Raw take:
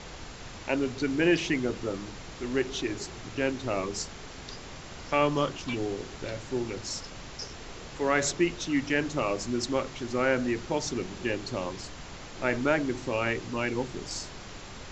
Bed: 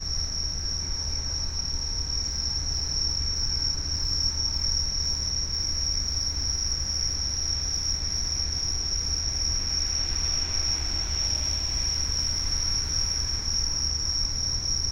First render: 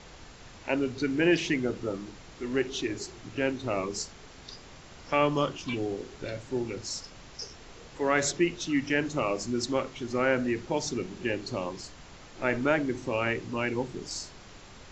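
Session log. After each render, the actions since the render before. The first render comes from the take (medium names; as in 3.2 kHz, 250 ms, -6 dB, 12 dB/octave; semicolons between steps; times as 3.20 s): noise print and reduce 6 dB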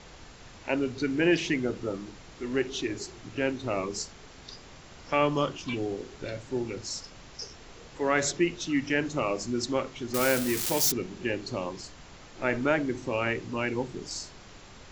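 10.14–10.92 s: zero-crossing glitches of -18 dBFS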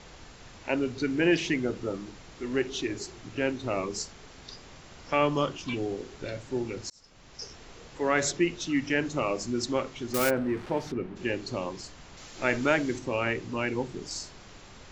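6.90–7.50 s: fade in; 10.29–11.15 s: low-pass 1.2 kHz -> 2 kHz; 12.17–12.99 s: treble shelf 3.1 kHz +10 dB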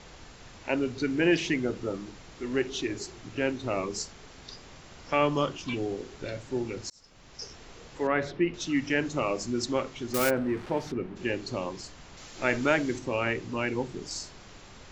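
8.07–8.54 s: distance through air 320 m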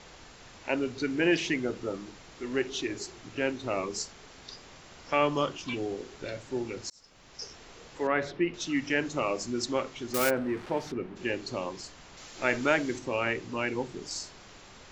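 bass shelf 220 Hz -6 dB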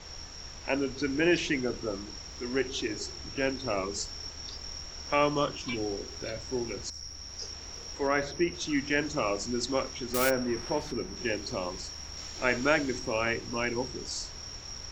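add bed -15.5 dB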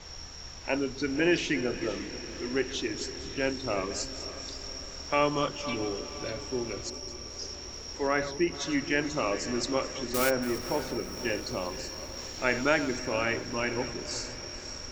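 chunks repeated in reverse 241 ms, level -14 dB; echo that smears into a reverb 530 ms, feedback 59%, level -13.5 dB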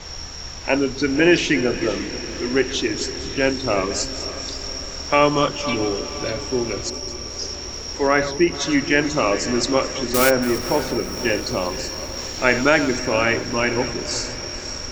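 trim +10 dB; peak limiter -2 dBFS, peak gain reduction 2 dB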